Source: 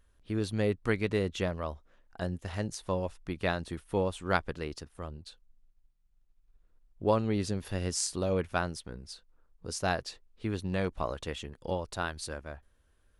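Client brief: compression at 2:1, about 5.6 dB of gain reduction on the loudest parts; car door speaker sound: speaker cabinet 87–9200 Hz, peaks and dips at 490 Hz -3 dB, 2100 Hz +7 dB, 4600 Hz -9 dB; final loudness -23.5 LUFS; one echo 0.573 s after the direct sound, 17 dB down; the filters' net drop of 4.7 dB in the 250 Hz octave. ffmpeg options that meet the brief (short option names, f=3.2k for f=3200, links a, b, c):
-af "equalizer=f=250:t=o:g=-6.5,acompressor=threshold=-34dB:ratio=2,highpass=87,equalizer=f=490:t=q:w=4:g=-3,equalizer=f=2.1k:t=q:w=4:g=7,equalizer=f=4.6k:t=q:w=4:g=-9,lowpass=f=9.2k:w=0.5412,lowpass=f=9.2k:w=1.3066,aecho=1:1:573:0.141,volume=15.5dB"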